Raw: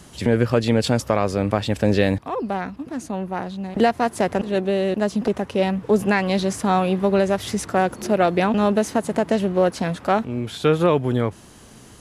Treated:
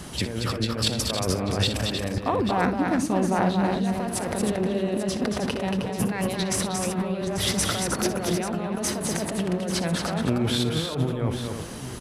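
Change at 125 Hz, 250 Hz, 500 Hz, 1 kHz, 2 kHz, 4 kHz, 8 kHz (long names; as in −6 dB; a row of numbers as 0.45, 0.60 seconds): −2.5, −3.5, −8.0, −6.0, −4.5, +4.0, +6.5 decibels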